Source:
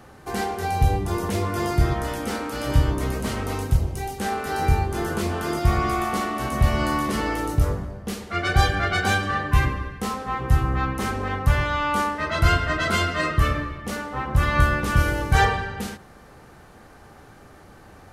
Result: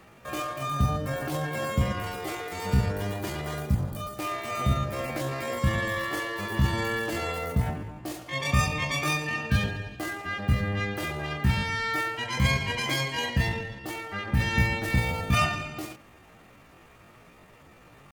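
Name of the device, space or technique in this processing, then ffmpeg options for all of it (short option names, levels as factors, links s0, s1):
chipmunk voice: -af "asetrate=68011,aresample=44100,atempo=0.64842,volume=0.531"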